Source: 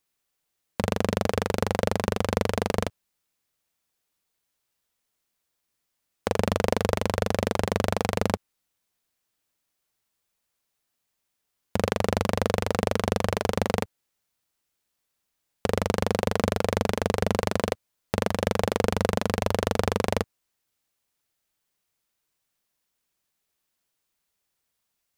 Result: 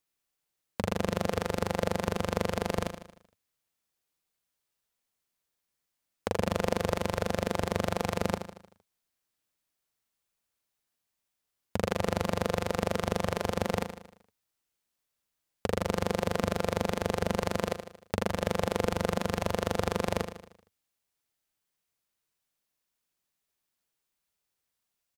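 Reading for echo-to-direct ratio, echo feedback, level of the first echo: −8.0 dB, 51%, −9.5 dB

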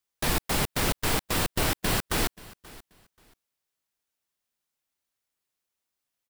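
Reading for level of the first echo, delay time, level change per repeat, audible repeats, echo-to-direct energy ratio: −21.0 dB, 532 ms, −13.0 dB, 2, −21.0 dB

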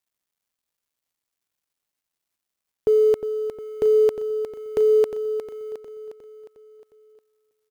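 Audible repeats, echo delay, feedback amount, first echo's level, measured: 5, 358 ms, 55%, −9.5 dB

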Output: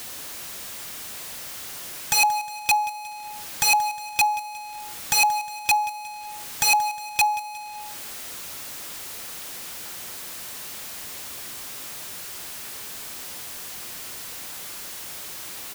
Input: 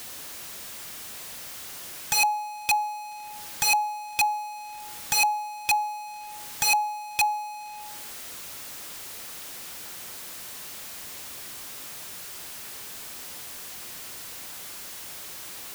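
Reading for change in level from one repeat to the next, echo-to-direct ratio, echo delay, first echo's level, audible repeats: −6.5 dB, −15.0 dB, 180 ms, −16.0 dB, 3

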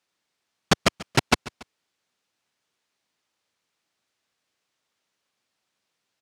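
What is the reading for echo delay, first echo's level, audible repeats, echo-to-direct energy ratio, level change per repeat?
142 ms, −19.0 dB, 2, −18.0 dB, −6.0 dB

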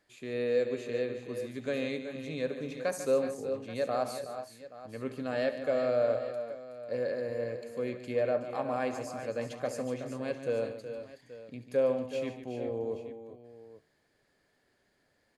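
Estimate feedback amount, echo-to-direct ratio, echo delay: repeats not evenly spaced, −6.0 dB, 70 ms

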